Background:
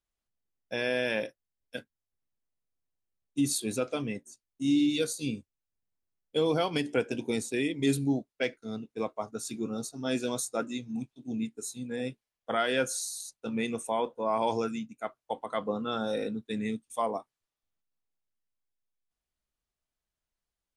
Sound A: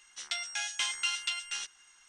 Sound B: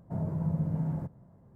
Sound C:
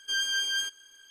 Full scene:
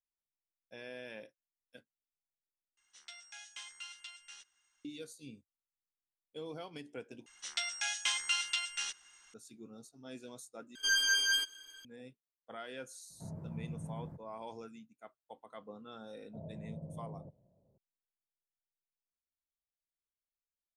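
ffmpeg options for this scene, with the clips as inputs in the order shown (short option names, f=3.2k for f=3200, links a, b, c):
-filter_complex "[1:a]asplit=2[a][b];[2:a]asplit=2[c][d];[0:a]volume=-17.5dB[e];[3:a]aecho=1:1:6.5:0.82[f];[d]lowpass=f=590:t=q:w=4[g];[e]asplit=4[h][i][j][k];[h]atrim=end=2.774[l];[a]atrim=end=2.08,asetpts=PTS-STARTPTS,volume=-16dB[m];[i]atrim=start=4.846:end=7.264[n];[b]atrim=end=2.08,asetpts=PTS-STARTPTS,volume=-1dB[o];[j]atrim=start=9.336:end=10.754[p];[f]atrim=end=1.1,asetpts=PTS-STARTPTS,volume=-1dB[q];[k]atrim=start=11.846[r];[c]atrim=end=1.55,asetpts=PTS-STARTPTS,volume=-12.5dB,afade=t=in:d=0.004:c=hsin,afade=t=out:st=1.546:d=0.004:c=hsin,adelay=13100[s];[g]atrim=end=1.55,asetpts=PTS-STARTPTS,volume=-16.5dB,afade=t=in:d=0.004:c=hsin,afade=t=out:st=1.546:d=0.004:c=hsin,adelay=16230[t];[l][m]acrossfade=d=0.004:c1=hsin:c2=hsin[u];[u][n]acrossfade=d=0.004:c1=hsin:c2=hsin[v];[v][o]acrossfade=d=0.004:c1=hsin:c2=hsin[w];[w][p]acrossfade=d=0.004:c1=hsin:c2=hsin[x];[x][q]acrossfade=d=0.004:c1=hsin:c2=hsin[y];[y][r]acrossfade=d=0.004:c1=hsin:c2=hsin[z];[z][s][t]amix=inputs=3:normalize=0"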